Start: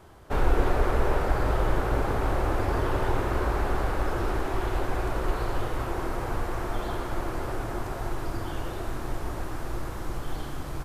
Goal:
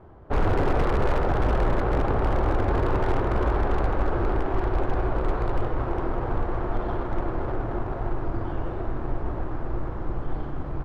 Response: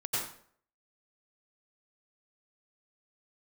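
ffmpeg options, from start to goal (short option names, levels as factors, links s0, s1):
-af "adynamicsmooth=sensitivity=1:basefreq=1200,aeval=exprs='0.112*(abs(mod(val(0)/0.112+3,4)-2)-1)':c=same,volume=1.58"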